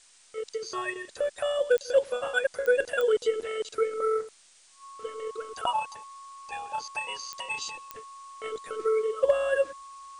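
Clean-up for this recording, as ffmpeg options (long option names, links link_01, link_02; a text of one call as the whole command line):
ffmpeg -i in.wav -af "adeclick=threshold=4,bandreject=frequency=1100:width=30,afftdn=noise_reduction=15:noise_floor=-57" out.wav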